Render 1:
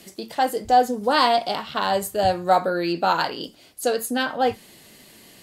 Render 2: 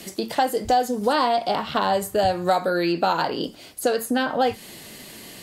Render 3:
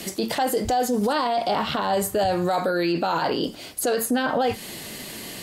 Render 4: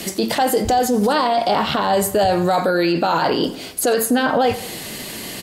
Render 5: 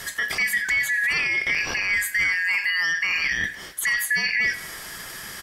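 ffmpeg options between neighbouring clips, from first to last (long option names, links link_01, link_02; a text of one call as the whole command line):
ffmpeg -i in.wav -filter_complex "[0:a]acrossover=split=1000|2000[link_01][link_02][link_03];[link_01]acompressor=threshold=-28dB:ratio=4[link_04];[link_02]acompressor=threshold=-40dB:ratio=4[link_05];[link_03]acompressor=threshold=-40dB:ratio=4[link_06];[link_04][link_05][link_06]amix=inputs=3:normalize=0,volume=7.5dB" out.wav
ffmpeg -i in.wav -af "alimiter=limit=-20dB:level=0:latency=1:release=14,volume=5dB" out.wav
ffmpeg -i in.wav -filter_complex "[0:a]asplit=2[link_01][link_02];[link_02]adelay=89,lowpass=frequency=4600:poles=1,volume=-16dB,asplit=2[link_03][link_04];[link_04]adelay=89,lowpass=frequency=4600:poles=1,volume=0.5,asplit=2[link_05][link_06];[link_06]adelay=89,lowpass=frequency=4600:poles=1,volume=0.5,asplit=2[link_07][link_08];[link_08]adelay=89,lowpass=frequency=4600:poles=1,volume=0.5[link_09];[link_01][link_03][link_05][link_07][link_09]amix=inputs=5:normalize=0,volume=5.5dB" out.wav
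ffmpeg -i in.wav -af "afftfilt=real='real(if(lt(b,272),68*(eq(floor(b/68),0)*2+eq(floor(b/68),1)*0+eq(floor(b/68),2)*3+eq(floor(b/68),3)*1)+mod(b,68),b),0)':imag='imag(if(lt(b,272),68*(eq(floor(b/68),0)*2+eq(floor(b/68),1)*0+eq(floor(b/68),2)*3+eq(floor(b/68),3)*1)+mod(b,68),b),0)':win_size=2048:overlap=0.75,volume=-6dB" out.wav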